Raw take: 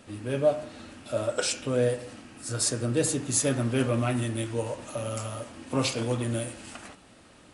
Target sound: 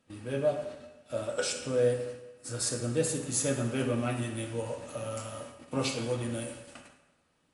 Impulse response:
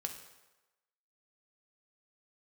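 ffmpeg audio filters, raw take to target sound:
-filter_complex "[0:a]agate=range=-14dB:threshold=-42dB:ratio=16:detection=peak[link_01];[1:a]atrim=start_sample=2205[link_02];[link_01][link_02]afir=irnorm=-1:irlink=0,volume=-3.5dB"

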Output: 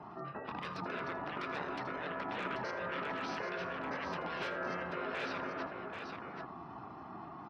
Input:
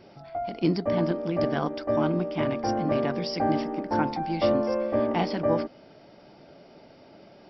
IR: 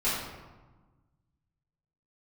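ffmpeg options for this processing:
-filter_complex "[0:a]afftfilt=real='re*lt(hypot(re,im),0.0708)':imag='im*lt(hypot(re,im),0.0708)':win_size=1024:overlap=0.75,afftdn=noise_reduction=25:noise_floor=-62,equalizer=frequency=1600:width_type=o:width=0.36:gain=-4.5,acrossover=split=210|1600[link_01][link_02][link_03];[link_03]aeval=exprs='(mod(31.6*val(0)+1,2)-1)/31.6':channel_layout=same[link_04];[link_01][link_02][link_04]amix=inputs=3:normalize=0,aeval=exprs='val(0)*sin(2*PI*520*n/s)':channel_layout=same,asoftclip=type=hard:threshold=-35.5dB,highpass=150,lowpass=2100,asplit=2[link_05][link_06];[link_06]aecho=0:1:81|785:0.178|0.501[link_07];[link_05][link_07]amix=inputs=2:normalize=0,volume=7dB"

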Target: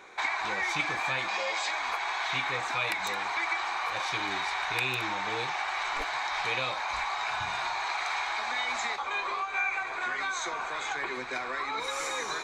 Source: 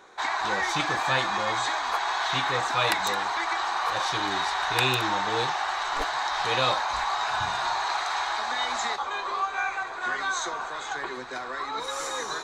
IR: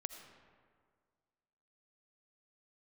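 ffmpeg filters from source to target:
-filter_complex "[0:a]asettb=1/sr,asplit=3[link_01][link_02][link_03];[link_01]atrim=end=1.284[link_04];[link_02]atrim=start=1.28:end=1.71,asetpts=PTS-STARTPTS,afade=type=in:duration=0.004:curve=qsin,afade=type=out:start_time=0.426:duration=0.004:curve=qsin,highpass=390,equalizer=frequency=560:width_type=q:width=4:gain=8,equalizer=frequency=1300:width_type=q:width=4:gain=-4,equalizer=frequency=2800:width_type=q:width=4:gain=6,equalizer=frequency=5000:width_type=q:width=4:gain=10,equalizer=frequency=7200:width_type=q:width=4:gain=4,lowpass=frequency=9600:width=0.5412,lowpass=frequency=9600:width=1.3066[link_05];[link_03]atrim=start=1.706[link_06];[link_04][link_05]acrossfade=duration=0.004:curve1=hsin:curve2=qsin[link_07];[link_07][link_06]acrossfade=duration=0.004:curve1=qsin:curve2=hsin,acompressor=threshold=-30dB:ratio=6,equalizer=frequency=2300:width_type=o:width=0.3:gain=13"

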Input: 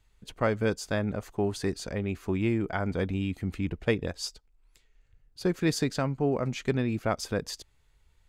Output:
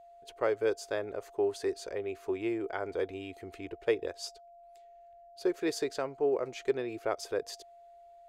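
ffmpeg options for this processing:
ffmpeg -i in.wav -af "lowshelf=frequency=280:width_type=q:width=3:gain=-11.5,aeval=exprs='val(0)+0.00501*sin(2*PI*690*n/s)':channel_layout=same,volume=-6dB" out.wav

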